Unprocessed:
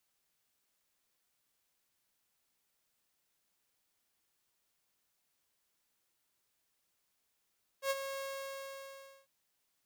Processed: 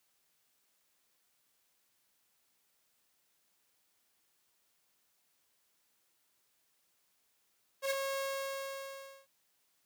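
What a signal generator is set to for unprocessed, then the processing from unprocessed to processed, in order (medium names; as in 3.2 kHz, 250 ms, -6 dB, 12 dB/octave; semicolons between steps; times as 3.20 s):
ADSR saw 545 Hz, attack 84 ms, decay 34 ms, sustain -9.5 dB, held 0.36 s, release 1090 ms -26.5 dBFS
in parallel at -3 dB: integer overflow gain 34.5 dB; on the sum: bass shelf 89 Hz -8 dB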